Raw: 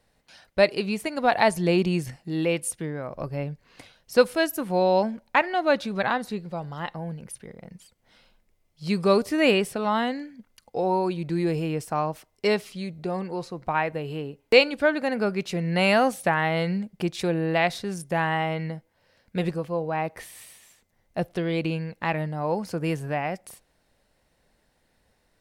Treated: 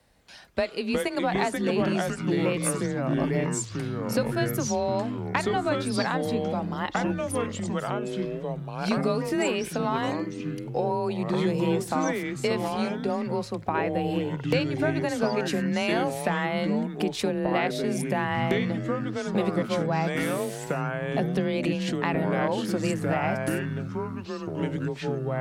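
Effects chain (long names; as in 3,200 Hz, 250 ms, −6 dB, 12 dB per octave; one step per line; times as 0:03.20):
downward compressor 10 to 1, threshold −27 dBFS, peak gain reduction 16.5 dB
delay with pitch and tempo change per echo 211 ms, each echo −4 semitones, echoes 3
frequency shifter +26 Hz
level +3.5 dB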